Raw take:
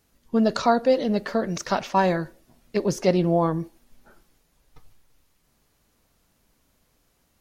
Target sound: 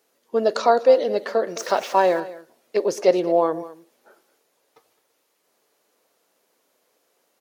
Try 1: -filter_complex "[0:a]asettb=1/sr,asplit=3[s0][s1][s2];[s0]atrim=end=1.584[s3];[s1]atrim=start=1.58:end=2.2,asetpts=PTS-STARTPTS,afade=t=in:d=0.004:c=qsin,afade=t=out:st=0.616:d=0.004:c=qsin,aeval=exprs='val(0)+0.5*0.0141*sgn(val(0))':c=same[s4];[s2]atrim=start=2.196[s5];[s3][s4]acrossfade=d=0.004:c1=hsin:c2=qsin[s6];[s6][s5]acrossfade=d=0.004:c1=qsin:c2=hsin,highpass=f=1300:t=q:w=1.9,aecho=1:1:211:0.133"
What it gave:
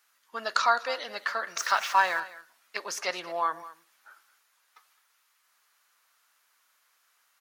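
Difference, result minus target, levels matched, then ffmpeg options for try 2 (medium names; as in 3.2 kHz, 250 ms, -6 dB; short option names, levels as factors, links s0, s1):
500 Hz band -10.5 dB
-filter_complex "[0:a]asettb=1/sr,asplit=3[s0][s1][s2];[s0]atrim=end=1.584[s3];[s1]atrim=start=1.58:end=2.2,asetpts=PTS-STARTPTS,afade=t=in:d=0.004:c=qsin,afade=t=out:st=0.616:d=0.004:c=qsin,aeval=exprs='val(0)+0.5*0.0141*sgn(val(0))':c=same[s4];[s2]atrim=start=2.196[s5];[s3][s4]acrossfade=d=0.004:c1=hsin:c2=qsin[s6];[s6][s5]acrossfade=d=0.004:c1=qsin:c2=hsin,highpass=f=450:t=q:w=1.9,aecho=1:1:211:0.133"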